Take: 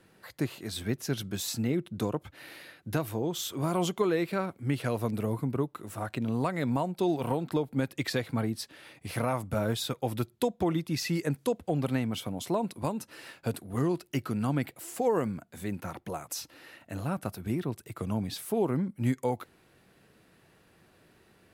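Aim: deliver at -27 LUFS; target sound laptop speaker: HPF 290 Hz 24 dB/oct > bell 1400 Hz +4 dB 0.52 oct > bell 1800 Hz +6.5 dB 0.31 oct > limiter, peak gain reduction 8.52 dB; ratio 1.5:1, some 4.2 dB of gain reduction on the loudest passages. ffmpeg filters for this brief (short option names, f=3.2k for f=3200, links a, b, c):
-af "acompressor=threshold=-34dB:ratio=1.5,highpass=f=290:w=0.5412,highpass=f=290:w=1.3066,equalizer=f=1.4k:t=o:w=0.52:g=4,equalizer=f=1.8k:t=o:w=0.31:g=6.5,volume=12dB,alimiter=limit=-15.5dB:level=0:latency=1"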